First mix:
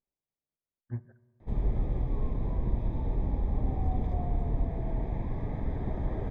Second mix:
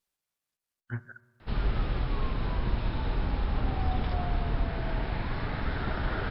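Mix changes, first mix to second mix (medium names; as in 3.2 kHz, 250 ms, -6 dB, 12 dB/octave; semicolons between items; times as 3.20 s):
background: add brick-wall FIR low-pass 5.4 kHz; master: remove boxcar filter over 31 samples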